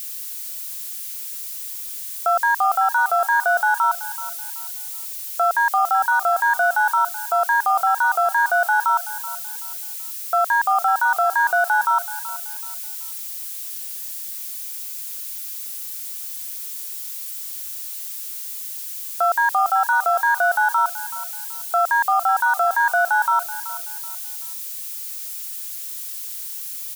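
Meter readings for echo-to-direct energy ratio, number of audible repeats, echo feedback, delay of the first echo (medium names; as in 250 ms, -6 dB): -14.5 dB, 3, 32%, 379 ms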